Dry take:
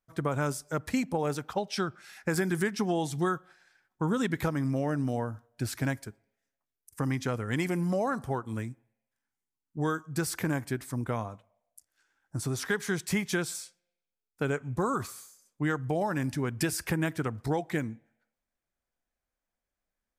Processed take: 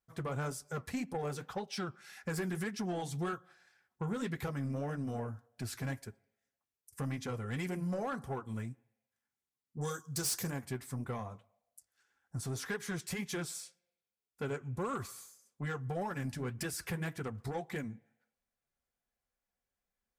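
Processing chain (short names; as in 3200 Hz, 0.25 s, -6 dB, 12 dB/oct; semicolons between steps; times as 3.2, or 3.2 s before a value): 9.81–10.5 resonant high shelf 3500 Hz +12.5 dB, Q 1.5; in parallel at -3 dB: compressor, threshold -39 dBFS, peak gain reduction 19.5 dB; on the sum: notch comb 310 Hz; soft clip -23.5 dBFS, distortion -15 dB; flange 1.8 Hz, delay 2.2 ms, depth 8.4 ms, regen -61%; gain -2 dB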